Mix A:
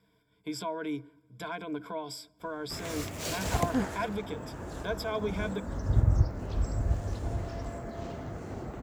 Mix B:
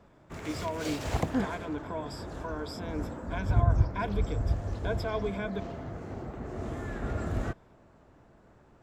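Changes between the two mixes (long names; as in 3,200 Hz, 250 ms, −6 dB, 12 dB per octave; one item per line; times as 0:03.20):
background: entry −2.40 s
master: add high-shelf EQ 5,700 Hz −11 dB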